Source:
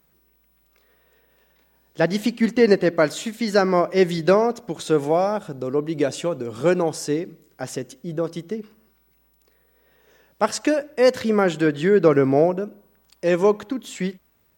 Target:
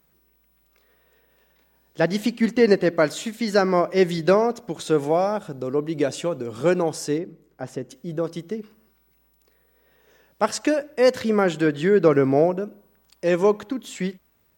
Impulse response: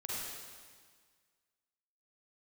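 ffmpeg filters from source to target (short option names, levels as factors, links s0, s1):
-filter_complex "[0:a]asettb=1/sr,asplit=3[s0][s1][s2];[s0]atrim=end=7.184[s3];[s1]atrim=start=7.18:end=7.91,asetpts=PTS-STARTPTS,afade=t=in:d=0.004:c=qsin,afade=t=out:st=0.726:d=0.004:c=qsin,highshelf=f=2200:g=-12[s4];[s2]atrim=start=7.906[s5];[s3][s4]acrossfade=d=0.004:c1=hsin:c2=qsin[s6];[s6][s5]acrossfade=d=0.004:c1=qsin:c2=hsin,volume=0.891"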